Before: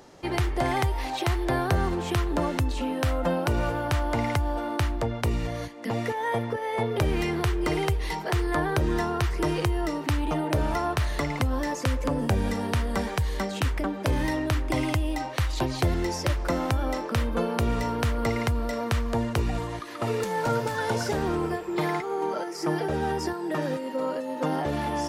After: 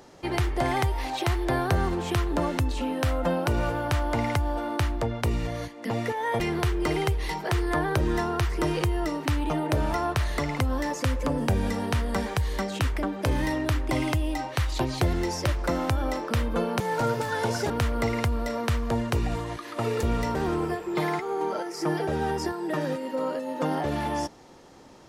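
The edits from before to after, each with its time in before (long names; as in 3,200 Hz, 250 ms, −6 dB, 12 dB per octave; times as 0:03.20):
0:06.40–0:07.21: remove
0:17.61–0:17.93: swap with 0:20.26–0:21.16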